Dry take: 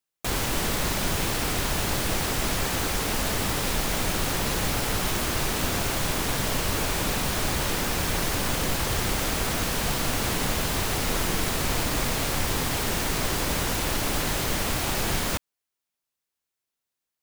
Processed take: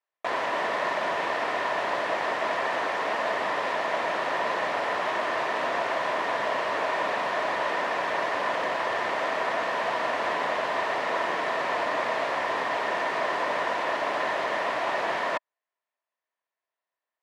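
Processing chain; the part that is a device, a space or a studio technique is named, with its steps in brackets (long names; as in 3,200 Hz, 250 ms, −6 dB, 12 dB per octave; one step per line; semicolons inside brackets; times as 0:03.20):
tin-can telephone (band-pass filter 460–2,400 Hz; hollow resonant body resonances 650/990/1,800 Hz, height 10 dB, ringing for 20 ms)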